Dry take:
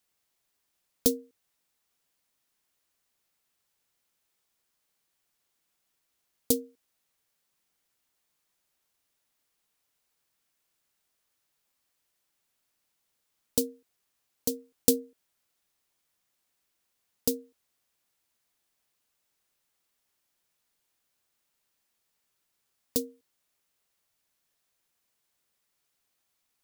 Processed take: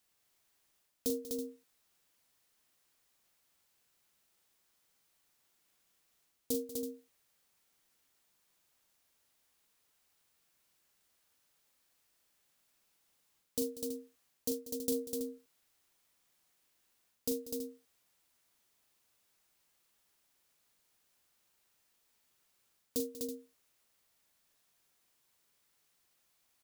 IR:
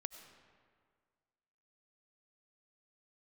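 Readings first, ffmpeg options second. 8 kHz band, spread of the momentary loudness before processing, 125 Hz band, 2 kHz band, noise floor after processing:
−8.5 dB, 12 LU, −11.5 dB, can't be measured, −76 dBFS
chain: -af "areverse,acompressor=threshold=-33dB:ratio=8,areverse,aecho=1:1:41|190|250|327:0.447|0.178|0.596|0.251,volume=1dB"

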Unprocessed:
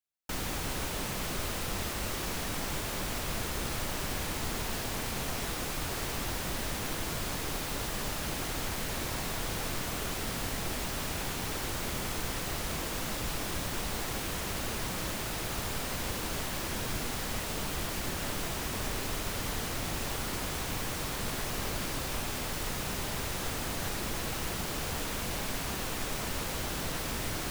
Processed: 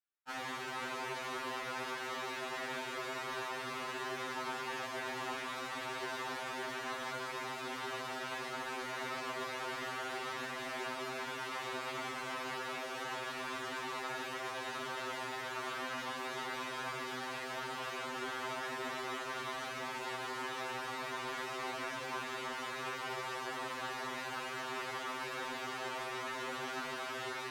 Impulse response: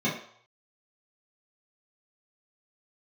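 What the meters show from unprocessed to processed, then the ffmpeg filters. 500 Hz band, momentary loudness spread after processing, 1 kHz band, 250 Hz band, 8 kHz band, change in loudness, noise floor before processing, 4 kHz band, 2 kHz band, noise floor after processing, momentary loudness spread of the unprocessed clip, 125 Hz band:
−3.0 dB, 1 LU, 0.0 dB, −9.0 dB, −14.0 dB, −5.5 dB, −36 dBFS, −6.5 dB, −1.5 dB, −43 dBFS, 0 LU, −18.0 dB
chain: -filter_complex "[0:a]bandpass=frequency=1300:width_type=q:width=0.85:csg=0,asplit=2[link_01][link_02];[1:a]atrim=start_sample=2205,asetrate=74970,aresample=44100,adelay=104[link_03];[link_02][link_03]afir=irnorm=-1:irlink=0,volume=-15.5dB[link_04];[link_01][link_04]amix=inputs=2:normalize=0,afftfilt=real='re*2.45*eq(mod(b,6),0)':imag='im*2.45*eq(mod(b,6),0)':win_size=2048:overlap=0.75,volume=2.5dB"

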